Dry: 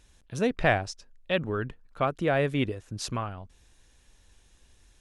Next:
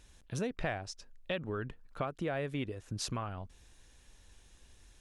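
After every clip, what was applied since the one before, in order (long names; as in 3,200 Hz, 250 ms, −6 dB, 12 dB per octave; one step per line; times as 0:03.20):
downward compressor 4 to 1, threshold −34 dBFS, peak gain reduction 14 dB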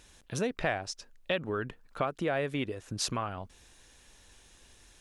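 low-shelf EQ 160 Hz −9 dB
level +6 dB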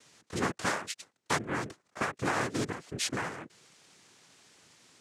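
cochlear-implant simulation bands 3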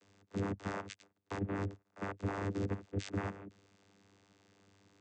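output level in coarse steps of 13 dB
channel vocoder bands 16, saw 98.9 Hz
level +4 dB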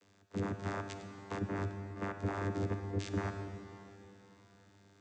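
convolution reverb RT60 3.6 s, pre-delay 33 ms, DRR 6.5 dB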